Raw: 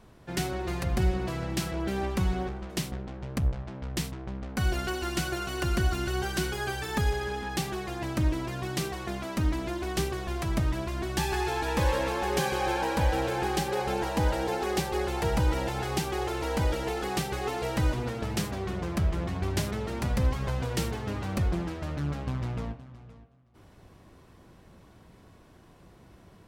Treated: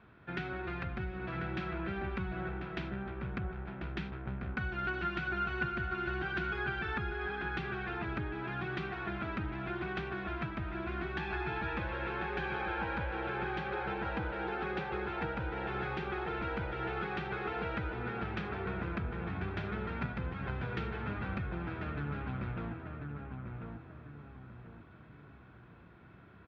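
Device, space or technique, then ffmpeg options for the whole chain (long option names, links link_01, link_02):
bass amplifier: -filter_complex "[0:a]equalizer=frequency=1500:width=1.6:gain=3.5,bandreject=frequency=2900:width=8.8,acompressor=threshold=-30dB:ratio=4,highpass=63,equalizer=frequency=550:width_type=q:width=4:gain=-4,equalizer=frequency=1400:width_type=q:width=4:gain=10,equalizer=frequency=2100:width_type=q:width=4:gain=-5,lowpass=frequency=2300:width=0.5412,lowpass=frequency=2300:width=1.3066,highshelf=frequency=2000:width_type=q:width=1.5:gain=10.5,asplit=2[link_01][link_02];[link_02]adelay=1042,lowpass=frequency=1500:poles=1,volume=-4dB,asplit=2[link_03][link_04];[link_04]adelay=1042,lowpass=frequency=1500:poles=1,volume=0.4,asplit=2[link_05][link_06];[link_06]adelay=1042,lowpass=frequency=1500:poles=1,volume=0.4,asplit=2[link_07][link_08];[link_08]adelay=1042,lowpass=frequency=1500:poles=1,volume=0.4,asplit=2[link_09][link_10];[link_10]adelay=1042,lowpass=frequency=1500:poles=1,volume=0.4[link_11];[link_01][link_03][link_05][link_07][link_09][link_11]amix=inputs=6:normalize=0,volume=-4.5dB"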